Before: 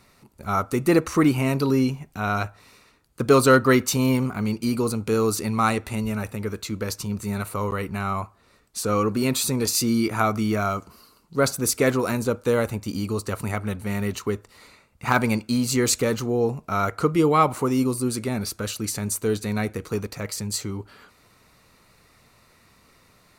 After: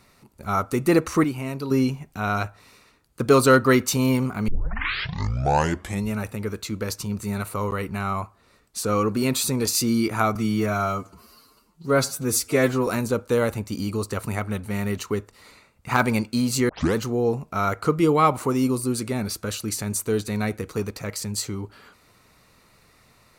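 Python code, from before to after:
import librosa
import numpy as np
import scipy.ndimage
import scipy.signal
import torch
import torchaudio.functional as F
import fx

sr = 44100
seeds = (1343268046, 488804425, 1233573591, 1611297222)

y = fx.edit(x, sr, fx.clip_gain(start_s=1.24, length_s=0.47, db=-7.5),
    fx.tape_start(start_s=4.48, length_s=1.62),
    fx.stretch_span(start_s=10.35, length_s=1.68, factor=1.5),
    fx.tape_start(start_s=15.85, length_s=0.26), tone=tone)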